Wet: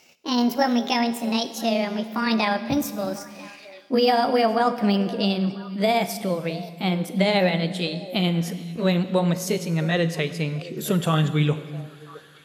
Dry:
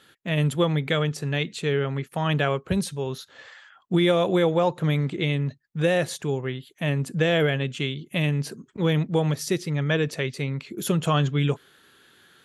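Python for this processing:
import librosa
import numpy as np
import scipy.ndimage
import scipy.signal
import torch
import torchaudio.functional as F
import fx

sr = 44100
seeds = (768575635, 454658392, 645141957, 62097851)

y = fx.pitch_glide(x, sr, semitones=8.5, runs='ending unshifted')
y = fx.echo_stepped(y, sr, ms=332, hz=190.0, octaves=1.4, feedback_pct=70, wet_db=-12.0)
y = fx.rev_schroeder(y, sr, rt60_s=1.7, comb_ms=32, drr_db=12.0)
y = y * 10.0 ** (2.0 / 20.0)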